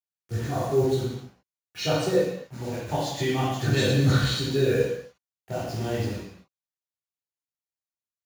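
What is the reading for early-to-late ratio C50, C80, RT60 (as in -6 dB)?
-1.0 dB, 3.0 dB, no single decay rate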